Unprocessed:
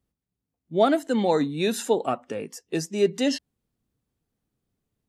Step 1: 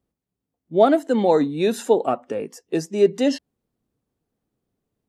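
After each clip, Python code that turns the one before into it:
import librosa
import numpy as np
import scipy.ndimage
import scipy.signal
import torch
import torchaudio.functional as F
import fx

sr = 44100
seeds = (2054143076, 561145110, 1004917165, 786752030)

y = fx.peak_eq(x, sr, hz=490.0, db=8.0, octaves=2.9)
y = F.gain(torch.from_numpy(y), -2.5).numpy()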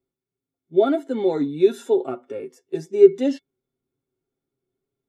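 y = fx.hpss(x, sr, part='percussive', gain_db=-7)
y = y + 0.58 * np.pad(y, (int(7.4 * sr / 1000.0), 0))[:len(y)]
y = fx.small_body(y, sr, hz=(370.0, 1400.0, 2200.0, 3500.0), ring_ms=95, db=16)
y = F.gain(torch.from_numpy(y), -6.5).numpy()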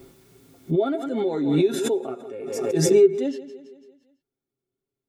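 y = fx.echo_feedback(x, sr, ms=168, feedback_pct=54, wet_db=-16)
y = fx.pre_swell(y, sr, db_per_s=36.0)
y = F.gain(torch.from_numpy(y), -5.5).numpy()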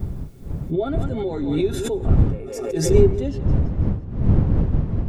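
y = fx.dmg_wind(x, sr, seeds[0], corner_hz=120.0, level_db=-19.0)
y = F.gain(torch.from_numpy(y), -1.5).numpy()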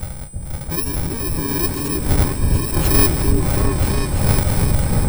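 y = fx.bit_reversed(x, sr, seeds[1], block=64)
y = y + 10.0 ** (-38.0 / 20.0) * np.sin(2.0 * np.pi * 8100.0 * np.arange(len(y)) / sr)
y = fx.echo_opening(y, sr, ms=330, hz=400, octaves=2, feedback_pct=70, wet_db=0)
y = F.gain(torch.from_numpy(y), -1.0).numpy()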